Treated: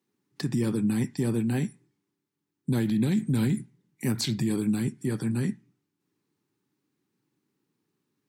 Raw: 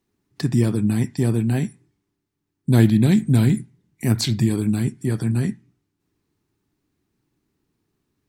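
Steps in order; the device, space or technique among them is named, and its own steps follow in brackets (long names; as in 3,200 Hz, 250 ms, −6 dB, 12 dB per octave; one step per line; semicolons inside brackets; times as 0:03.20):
PA system with an anti-feedback notch (high-pass filter 130 Hz 24 dB per octave; Butterworth band-reject 670 Hz, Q 7.1; brickwall limiter −14 dBFS, peak gain reduction 8.5 dB)
level −4 dB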